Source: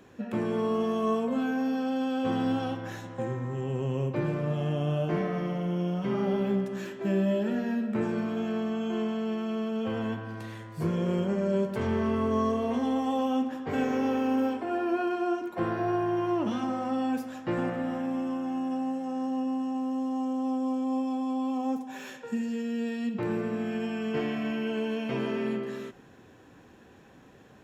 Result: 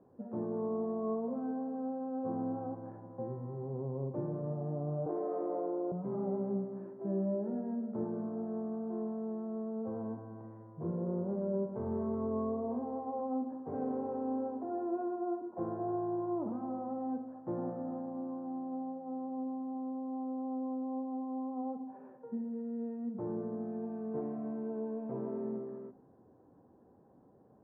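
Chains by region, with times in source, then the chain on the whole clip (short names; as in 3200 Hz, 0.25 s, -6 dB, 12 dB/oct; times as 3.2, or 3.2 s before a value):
5.06–5.92 steep high-pass 270 Hz 48 dB/oct + resonant high shelf 4800 Hz +13 dB, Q 3 + fast leveller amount 100%
whole clip: inverse Chebyshev low-pass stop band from 5300 Hz, stop band 80 dB; low shelf 62 Hz -11 dB; de-hum 52.85 Hz, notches 8; gain -6.5 dB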